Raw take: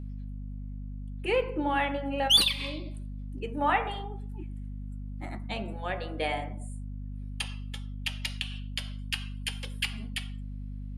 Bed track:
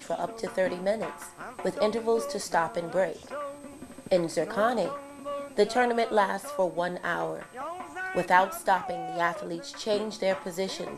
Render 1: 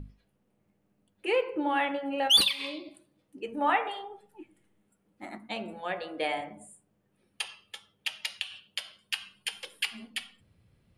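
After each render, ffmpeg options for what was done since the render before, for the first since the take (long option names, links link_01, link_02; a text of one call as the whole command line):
ffmpeg -i in.wav -af "bandreject=frequency=50:width_type=h:width=6,bandreject=frequency=100:width_type=h:width=6,bandreject=frequency=150:width_type=h:width=6,bandreject=frequency=200:width_type=h:width=6,bandreject=frequency=250:width_type=h:width=6" out.wav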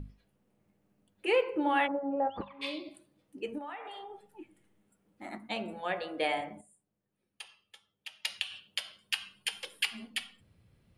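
ffmpeg -i in.wav -filter_complex "[0:a]asplit=3[link_01][link_02][link_03];[link_01]afade=type=out:start_time=1.86:duration=0.02[link_04];[link_02]lowpass=frequency=1100:width=0.5412,lowpass=frequency=1100:width=1.3066,afade=type=in:start_time=1.86:duration=0.02,afade=type=out:start_time=2.61:duration=0.02[link_05];[link_03]afade=type=in:start_time=2.61:duration=0.02[link_06];[link_04][link_05][link_06]amix=inputs=3:normalize=0,asplit=3[link_07][link_08][link_09];[link_07]afade=type=out:start_time=3.57:duration=0.02[link_10];[link_08]acompressor=threshold=-41dB:ratio=5:attack=3.2:release=140:knee=1:detection=peak,afade=type=in:start_time=3.57:duration=0.02,afade=type=out:start_time=5.24:duration=0.02[link_11];[link_09]afade=type=in:start_time=5.24:duration=0.02[link_12];[link_10][link_11][link_12]amix=inputs=3:normalize=0,asplit=3[link_13][link_14][link_15];[link_13]atrim=end=6.612[link_16];[link_14]atrim=start=6.608:end=8.252,asetpts=PTS-STARTPTS,volume=-12dB[link_17];[link_15]atrim=start=8.248[link_18];[link_16][link_17]acrossfade=duration=0.004:curve1=hsin:curve2=hsin[link_19];[link_19][link_18]acrossfade=duration=0.004:curve1=hsin:curve2=hsin" out.wav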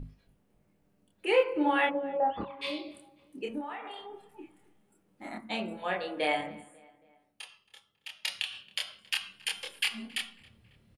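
ffmpeg -i in.wav -filter_complex "[0:a]asplit=2[link_01][link_02];[link_02]adelay=27,volume=-2dB[link_03];[link_01][link_03]amix=inputs=2:normalize=0,asplit=2[link_04][link_05];[link_05]adelay=273,lowpass=frequency=3200:poles=1,volume=-22.5dB,asplit=2[link_06][link_07];[link_07]adelay=273,lowpass=frequency=3200:poles=1,volume=0.51,asplit=2[link_08][link_09];[link_09]adelay=273,lowpass=frequency=3200:poles=1,volume=0.51[link_10];[link_04][link_06][link_08][link_10]amix=inputs=4:normalize=0" out.wav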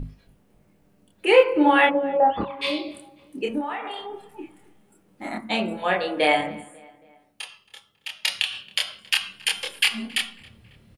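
ffmpeg -i in.wav -af "volume=9.5dB" out.wav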